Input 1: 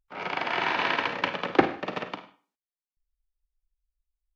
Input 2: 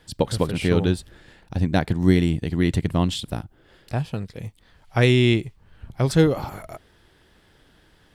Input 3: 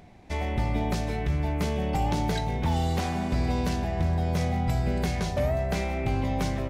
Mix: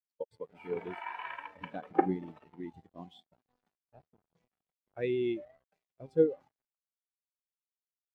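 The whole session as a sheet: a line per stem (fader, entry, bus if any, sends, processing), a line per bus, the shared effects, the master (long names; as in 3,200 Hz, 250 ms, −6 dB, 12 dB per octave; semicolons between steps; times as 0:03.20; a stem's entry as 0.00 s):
−2.5 dB, 0.40 s, no send, no processing
−7.5 dB, 0.00 s, no send, no processing
+2.0 dB, 0.00 s, no send, automatic ducking −11 dB, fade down 0.25 s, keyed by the second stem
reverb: not used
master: high-pass filter 570 Hz 6 dB per octave; bit-depth reduction 6 bits, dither none; every bin expanded away from the loudest bin 2.5 to 1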